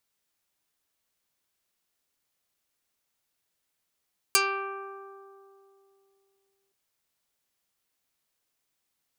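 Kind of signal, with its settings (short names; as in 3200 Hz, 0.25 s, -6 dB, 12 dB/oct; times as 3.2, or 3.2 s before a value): plucked string G4, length 2.37 s, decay 2.97 s, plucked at 0.2, dark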